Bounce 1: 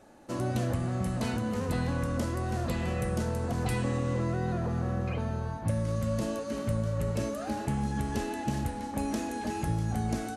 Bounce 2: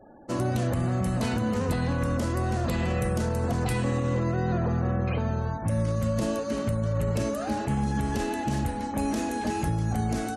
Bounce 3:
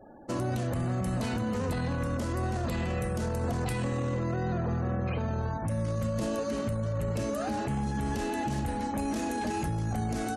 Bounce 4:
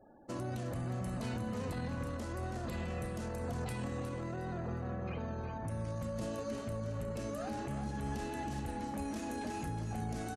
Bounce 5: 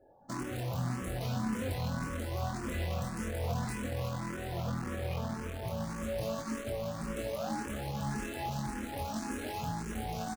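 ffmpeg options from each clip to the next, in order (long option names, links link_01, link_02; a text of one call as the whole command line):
ffmpeg -i in.wav -af "alimiter=limit=-23dB:level=0:latency=1:release=27,afftfilt=real='re*gte(hypot(re,im),0.002)':imag='im*gte(hypot(re,im),0.002)':win_size=1024:overlap=0.75,volume=5dB" out.wav
ffmpeg -i in.wav -af "alimiter=limit=-23.5dB:level=0:latency=1:release=16" out.wav
ffmpeg -i in.wav -af "aeval=exprs='0.0708*(cos(1*acos(clip(val(0)/0.0708,-1,1)))-cos(1*PI/2))+0.0141*(cos(3*acos(clip(val(0)/0.0708,-1,1)))-cos(3*PI/2))+0.00224*(cos(5*acos(clip(val(0)/0.0708,-1,1)))-cos(5*PI/2))':channel_layout=same,asoftclip=type=tanh:threshold=-27dB,aecho=1:1:361|722|1083:0.355|0.0993|0.0278,volume=-4dB" out.wav
ffmpeg -i in.wav -filter_complex "[0:a]asplit=2[link_01][link_02];[link_02]acrusher=bits=5:mix=0:aa=0.000001,volume=-5dB[link_03];[link_01][link_03]amix=inputs=2:normalize=0,asplit=2[link_04][link_05];[link_05]adelay=23,volume=-4dB[link_06];[link_04][link_06]amix=inputs=2:normalize=0,asplit=2[link_07][link_08];[link_08]afreqshift=1.8[link_09];[link_07][link_09]amix=inputs=2:normalize=1" out.wav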